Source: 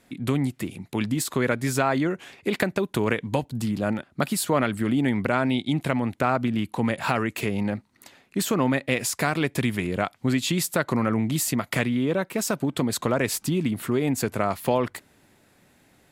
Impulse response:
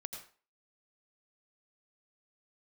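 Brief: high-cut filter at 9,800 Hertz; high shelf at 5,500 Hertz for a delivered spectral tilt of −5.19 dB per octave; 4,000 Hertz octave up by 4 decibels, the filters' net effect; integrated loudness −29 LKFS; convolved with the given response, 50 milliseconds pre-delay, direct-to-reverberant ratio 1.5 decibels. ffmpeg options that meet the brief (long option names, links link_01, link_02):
-filter_complex "[0:a]lowpass=9800,equalizer=frequency=4000:width_type=o:gain=8,highshelf=frequency=5500:gain=-7.5,asplit=2[link_01][link_02];[1:a]atrim=start_sample=2205,adelay=50[link_03];[link_02][link_03]afir=irnorm=-1:irlink=0,volume=0.5dB[link_04];[link_01][link_04]amix=inputs=2:normalize=0,volume=-6dB"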